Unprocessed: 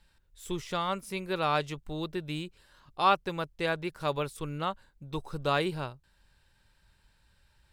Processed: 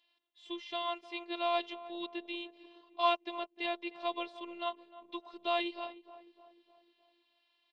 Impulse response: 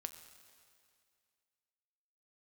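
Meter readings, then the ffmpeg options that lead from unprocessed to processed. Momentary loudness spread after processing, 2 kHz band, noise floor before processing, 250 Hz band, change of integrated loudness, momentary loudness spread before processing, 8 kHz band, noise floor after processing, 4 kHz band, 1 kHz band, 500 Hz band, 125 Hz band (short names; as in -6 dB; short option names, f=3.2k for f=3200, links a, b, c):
15 LU, -5.5 dB, -68 dBFS, -6.5 dB, -5.0 dB, 13 LU, under -20 dB, -76 dBFS, -1.5 dB, -5.0 dB, -4.5 dB, under -40 dB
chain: -filter_complex "[0:a]highpass=f=210:w=0.5412,highpass=f=210:w=1.3066,equalizer=f=300:t=q:w=4:g=4,equalizer=f=520:t=q:w=4:g=9,equalizer=f=740:t=q:w=4:g=10,equalizer=f=1.1k:t=q:w=4:g=10,equalizer=f=1.6k:t=q:w=4:g=-8,equalizer=f=2.4k:t=q:w=4:g=-9,lowpass=f=2.7k:w=0.5412,lowpass=f=2.7k:w=1.3066,aexciter=amount=9.4:drive=7:freq=2.1k,asplit=2[a][b];[b]adelay=305,lowpass=f=1.4k:p=1,volume=-15dB,asplit=2[c][d];[d]adelay=305,lowpass=f=1.4k:p=1,volume=0.54,asplit=2[e][f];[f]adelay=305,lowpass=f=1.4k:p=1,volume=0.54,asplit=2[g][h];[h]adelay=305,lowpass=f=1.4k:p=1,volume=0.54,asplit=2[i][j];[j]adelay=305,lowpass=f=1.4k:p=1,volume=0.54[k];[a][c][e][g][i][k]amix=inputs=6:normalize=0,afftfilt=real='hypot(re,im)*cos(PI*b)':imag='0':win_size=512:overlap=0.75,volume=-8.5dB"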